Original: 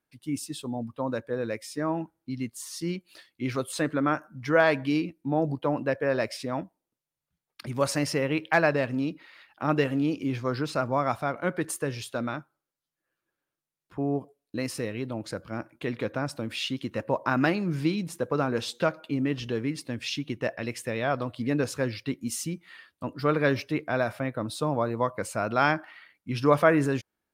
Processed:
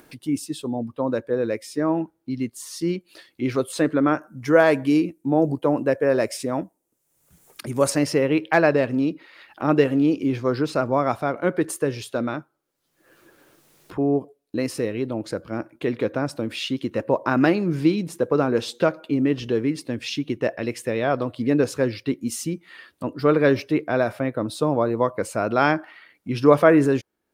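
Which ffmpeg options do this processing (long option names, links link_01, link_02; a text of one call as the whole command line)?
ffmpeg -i in.wav -filter_complex "[0:a]asettb=1/sr,asplit=3[link_01][link_02][link_03];[link_01]atrim=end=4.274[link_04];[link_02]atrim=start=4.27:end=7.9,asetpts=PTS-STARTPTS,afade=type=in:duration=0.004:curve=qsin,afade=type=out:start_time=3.626:duration=0.004:curve=qsin,highshelf=frequency=5700:width_type=q:width=1.5:gain=7.5[link_05];[link_03]atrim=start=7.896[link_06];[link_04][link_05]acrossfade=duration=0.004:curve1=hsin:curve2=qsin[link_07];[link_07][link_06]acrossfade=duration=0.004:curve1=qsin:curve2=hsin,equalizer=frequency=380:width=1:gain=7,acompressor=mode=upward:threshold=-35dB:ratio=2.5,volume=2dB" out.wav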